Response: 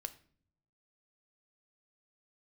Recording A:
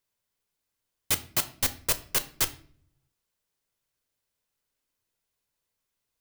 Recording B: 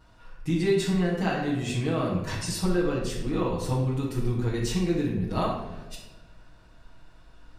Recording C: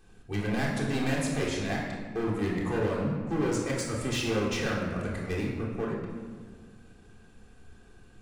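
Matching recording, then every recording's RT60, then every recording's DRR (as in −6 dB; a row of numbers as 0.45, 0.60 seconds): A; 0.55, 1.2, 1.8 seconds; 9.5, −7.5, −5.0 decibels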